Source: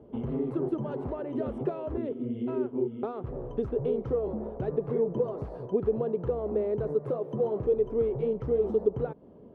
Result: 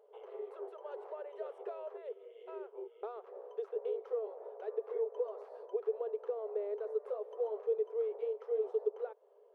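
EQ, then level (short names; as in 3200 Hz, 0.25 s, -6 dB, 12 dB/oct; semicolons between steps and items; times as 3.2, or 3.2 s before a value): brick-wall FIR high-pass 390 Hz; -7.5 dB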